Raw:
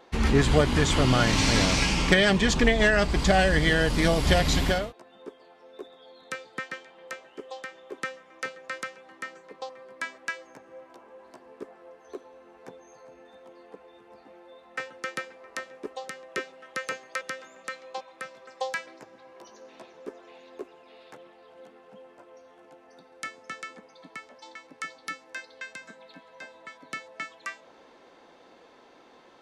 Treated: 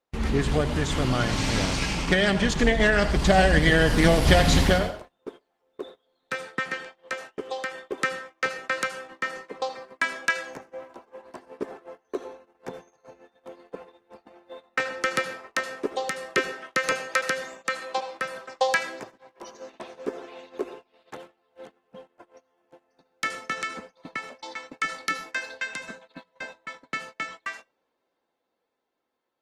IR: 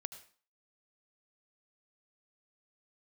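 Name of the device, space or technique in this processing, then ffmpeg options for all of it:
speakerphone in a meeting room: -filter_complex "[1:a]atrim=start_sample=2205[link_01];[0:a][link_01]afir=irnorm=-1:irlink=0,dynaudnorm=framelen=490:gausssize=13:maxgain=11.5dB,agate=range=-25dB:threshold=-40dB:ratio=16:detection=peak" -ar 48000 -c:a libopus -b:a 20k

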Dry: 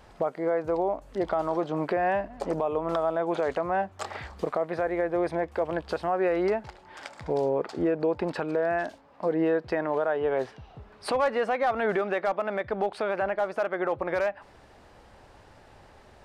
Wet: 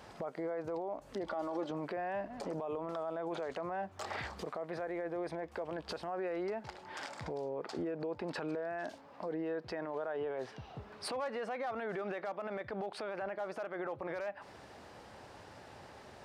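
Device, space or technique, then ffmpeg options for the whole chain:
broadcast voice chain: -filter_complex "[0:a]highpass=100,deesser=0.75,acompressor=threshold=-33dB:ratio=4,equalizer=frequency=5300:width_type=o:width=0.77:gain=2.5,alimiter=level_in=7.5dB:limit=-24dB:level=0:latency=1:release=24,volume=-7.5dB,asettb=1/sr,asplit=3[link_01][link_02][link_03];[link_01]atrim=end=1.264[link_04];[link_02]atrim=start=1.26:end=1.71,asetpts=PTS-STARTPTS,afade=type=in:duration=0.004:curve=qsin,afade=type=out:start_time=0.446:duration=0.004:curve=qsin,aecho=1:1:3.5:0.58,atrim=end_sample=19845[link_05];[link_03]atrim=start=1.706[link_06];[link_04][link_05]acrossfade=duration=0.004:curve1=hsin:curve2=qsin[link_07];[link_07][link_06]acrossfade=duration=0.004:curve1=qsin:curve2=hsin,volume=1dB"

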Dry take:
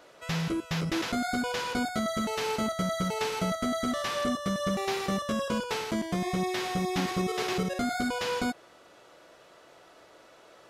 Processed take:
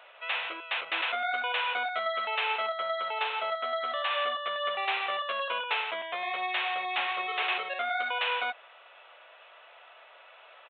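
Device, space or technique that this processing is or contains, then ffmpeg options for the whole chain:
musical greeting card: -filter_complex "[0:a]aresample=8000,aresample=44100,highpass=frequency=650:width=0.5412,highpass=frequency=650:width=1.3066,equalizer=frequency=2600:width_type=o:width=0.4:gain=7.5,asettb=1/sr,asplit=3[link_01][link_02][link_03];[link_01]atrim=end=2.664[link_04];[link_02]atrim=start=2.66:end=4.11,asetpts=PTS-STARTPTS,afade=type=in:duration=0.004:curve=qsin,afade=type=out:start_time=1.446:duration=0.004:curve=qsin,equalizer=frequency=2300:width_type=o:width=0.72:gain=-4.5[link_05];[link_03]atrim=start=4.106[link_06];[link_04][link_05]acrossfade=duration=0.004:curve1=hsin:curve2=qsin[link_07];[link_07][link_06]acrossfade=duration=0.004:curve1=qsin:curve2=hsin,volume=3dB"

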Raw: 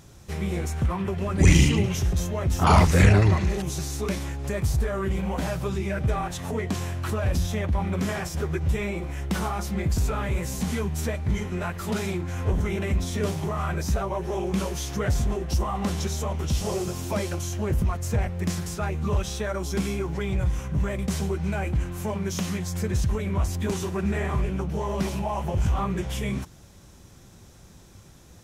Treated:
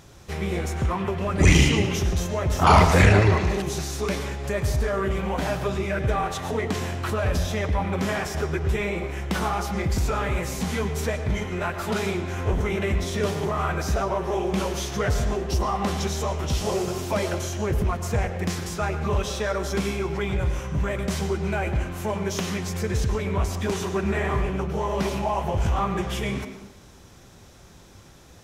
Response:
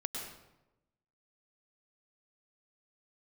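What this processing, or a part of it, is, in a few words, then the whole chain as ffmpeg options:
filtered reverb send: -filter_complex "[0:a]asplit=2[link_01][link_02];[link_02]highpass=290,lowpass=6200[link_03];[1:a]atrim=start_sample=2205[link_04];[link_03][link_04]afir=irnorm=-1:irlink=0,volume=-3dB[link_05];[link_01][link_05]amix=inputs=2:normalize=0"

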